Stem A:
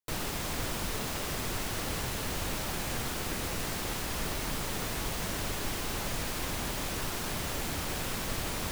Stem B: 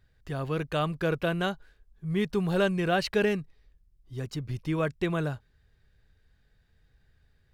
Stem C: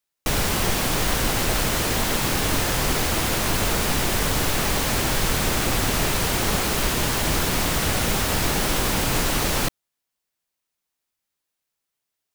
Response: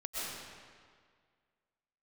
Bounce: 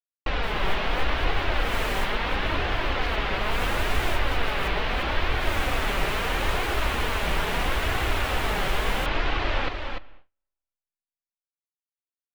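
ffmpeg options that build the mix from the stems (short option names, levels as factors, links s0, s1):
-filter_complex "[0:a]adelay=350,volume=0.668[s0];[1:a]highpass=160,volume=0.158,asplit=2[s1][s2];[2:a]lowpass=f=3300:w=0.5412,lowpass=f=3300:w=1.3066,equalizer=f=210:w=1:g=-10.5,flanger=delay=2.5:depth=2.8:regen=-11:speed=0.75:shape=triangular,volume=1.12,asplit=3[s3][s4][s5];[s4]volume=0.112[s6];[s5]volume=0.531[s7];[s2]apad=whole_len=399563[s8];[s0][s8]sidechaincompress=threshold=0.00112:ratio=8:attack=16:release=204[s9];[3:a]atrim=start_sample=2205[s10];[s6][s10]afir=irnorm=-1:irlink=0[s11];[s7]aecho=0:1:294:1[s12];[s9][s1][s3][s11][s12]amix=inputs=5:normalize=0,agate=range=0.0224:threshold=0.00708:ratio=16:detection=peak"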